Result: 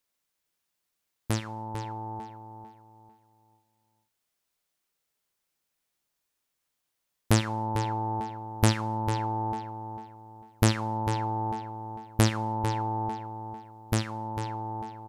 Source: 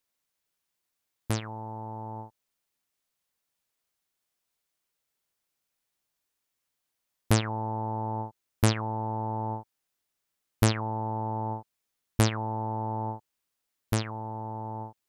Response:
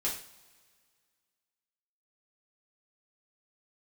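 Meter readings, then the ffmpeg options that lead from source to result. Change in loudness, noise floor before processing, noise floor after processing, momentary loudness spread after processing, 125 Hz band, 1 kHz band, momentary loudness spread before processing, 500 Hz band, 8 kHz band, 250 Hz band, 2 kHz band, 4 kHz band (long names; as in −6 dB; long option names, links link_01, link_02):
+1.0 dB, −83 dBFS, −81 dBFS, 16 LU, +1.0 dB, +2.5 dB, 13 LU, 0.0 dB, +1.0 dB, +1.5 dB, +1.5 dB, +1.5 dB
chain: -filter_complex "[0:a]asplit=2[link_01][link_02];[link_02]adelay=448,lowpass=frequency=4500:poles=1,volume=-8dB,asplit=2[link_03][link_04];[link_04]adelay=448,lowpass=frequency=4500:poles=1,volume=0.33,asplit=2[link_05][link_06];[link_06]adelay=448,lowpass=frequency=4500:poles=1,volume=0.33,asplit=2[link_07][link_08];[link_08]adelay=448,lowpass=frequency=4500:poles=1,volume=0.33[link_09];[link_01][link_03][link_05][link_07][link_09]amix=inputs=5:normalize=0,asplit=2[link_10][link_11];[1:a]atrim=start_sample=2205,afade=type=out:start_time=0.35:duration=0.01,atrim=end_sample=15876[link_12];[link_11][link_12]afir=irnorm=-1:irlink=0,volume=-17.5dB[link_13];[link_10][link_13]amix=inputs=2:normalize=0"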